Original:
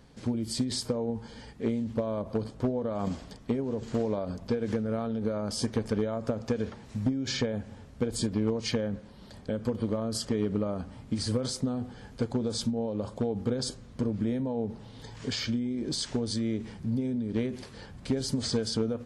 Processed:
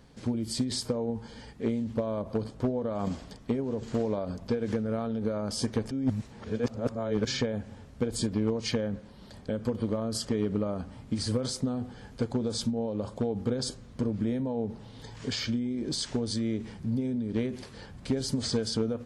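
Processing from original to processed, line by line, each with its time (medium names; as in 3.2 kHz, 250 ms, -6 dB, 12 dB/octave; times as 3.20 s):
5.91–7.25 s: reverse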